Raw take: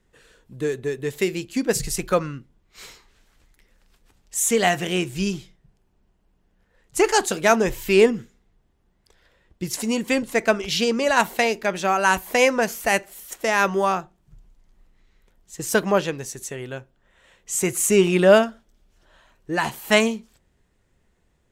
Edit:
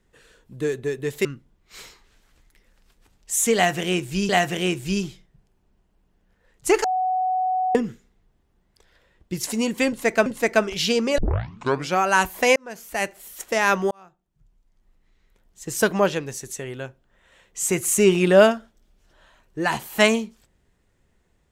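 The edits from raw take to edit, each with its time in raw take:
0:01.25–0:02.29: remove
0:04.59–0:05.33: repeat, 2 plays
0:07.14–0:08.05: beep over 744 Hz −19.5 dBFS
0:10.18–0:10.56: repeat, 2 plays
0:11.10: tape start 0.80 s
0:12.48–0:13.27: fade in
0:13.83–0:15.63: fade in

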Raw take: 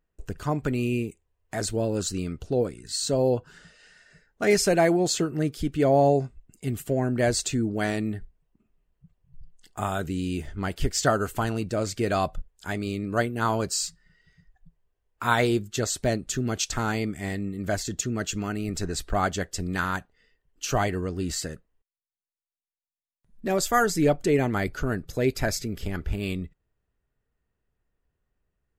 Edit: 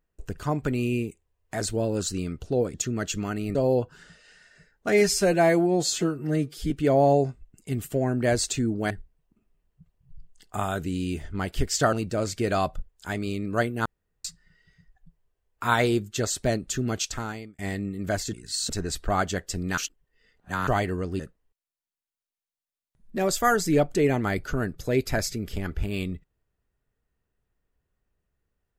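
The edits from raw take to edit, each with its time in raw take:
0:02.74–0:03.10: swap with 0:17.93–0:18.74
0:04.47–0:05.66: time-stretch 1.5×
0:07.86–0:08.14: remove
0:11.16–0:11.52: remove
0:13.45–0:13.84: fill with room tone
0:16.53–0:17.18: fade out
0:19.82–0:20.72: reverse
0:21.24–0:21.49: remove

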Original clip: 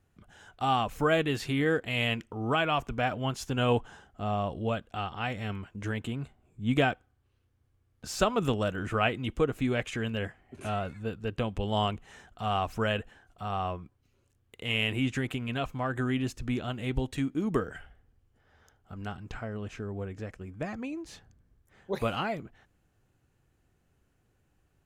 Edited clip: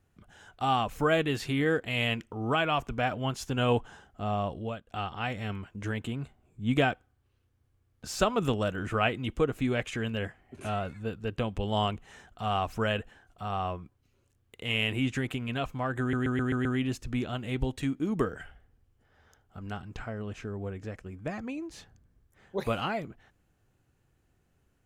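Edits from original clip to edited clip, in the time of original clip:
0:04.47–0:04.87: fade out, to −14 dB
0:16.00: stutter 0.13 s, 6 plays

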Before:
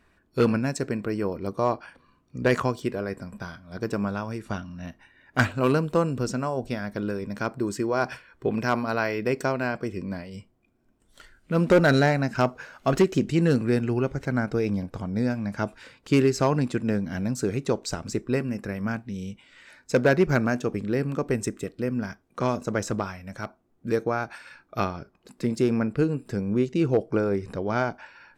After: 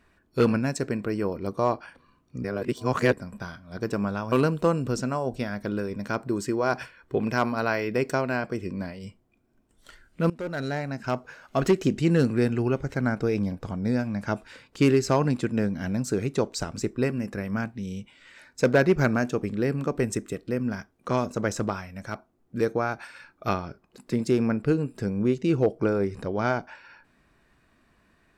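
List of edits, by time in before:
0:02.44–0:03.13: reverse
0:04.32–0:05.63: remove
0:11.61–0:13.24: fade in, from −20.5 dB

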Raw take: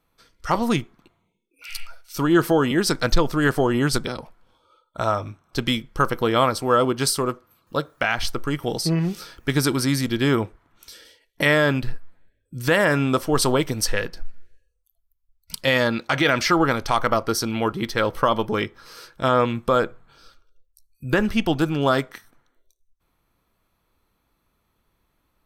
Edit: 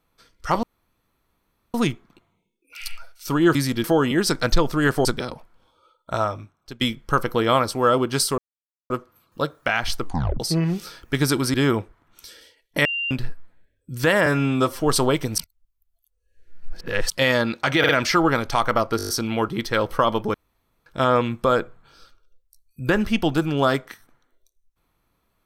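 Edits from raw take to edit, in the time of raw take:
0:00.63: splice in room tone 1.11 s
0:03.65–0:03.92: remove
0:05.02–0:05.68: fade out, to −20 dB
0:07.25: splice in silence 0.52 s
0:08.36: tape stop 0.39 s
0:09.89–0:10.18: move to 0:02.44
0:11.49–0:11.75: beep over 2,780 Hz −23 dBFS
0:12.90–0:13.26: time-stretch 1.5×
0:13.84–0:15.56: reverse
0:16.25: stutter 0.05 s, 3 plays
0:17.33: stutter 0.02 s, 7 plays
0:18.58–0:19.10: fill with room tone

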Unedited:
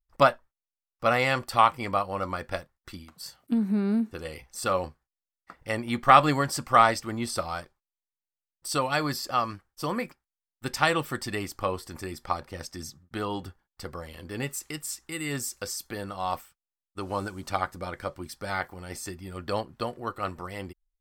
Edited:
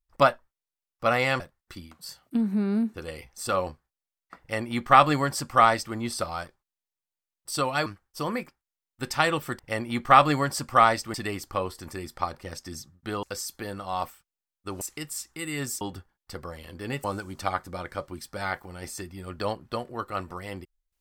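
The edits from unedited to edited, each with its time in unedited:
0:01.40–0:02.57: remove
0:05.57–0:07.12: duplicate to 0:11.22
0:09.03–0:09.49: remove
0:13.31–0:14.54: swap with 0:15.54–0:17.12

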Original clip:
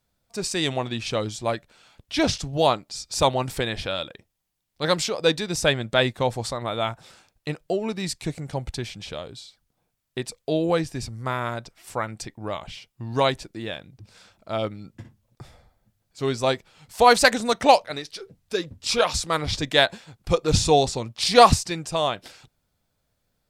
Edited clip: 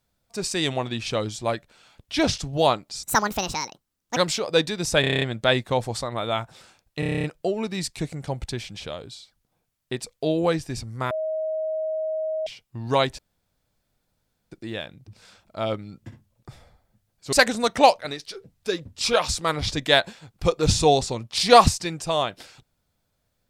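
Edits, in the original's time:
0:03.03–0:04.87: play speed 162%
0:05.71: stutter 0.03 s, 8 plays
0:07.49: stutter 0.03 s, 9 plays
0:11.36–0:12.72: beep over 631 Hz −24 dBFS
0:13.44: splice in room tone 1.33 s
0:16.25–0:17.18: remove

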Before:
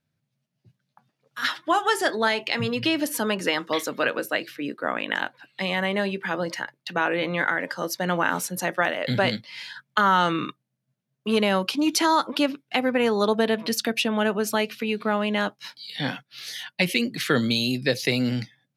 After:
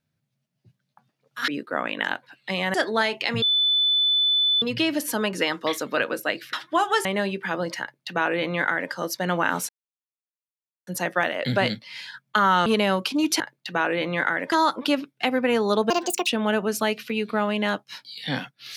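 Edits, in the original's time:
0:01.48–0:02.00: swap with 0:04.59–0:05.85
0:02.68: insert tone 3,500 Hz −17.5 dBFS 1.20 s
0:06.61–0:07.73: duplicate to 0:12.03
0:08.49: splice in silence 1.18 s
0:10.28–0:11.29: remove
0:13.41–0:13.99: play speed 157%

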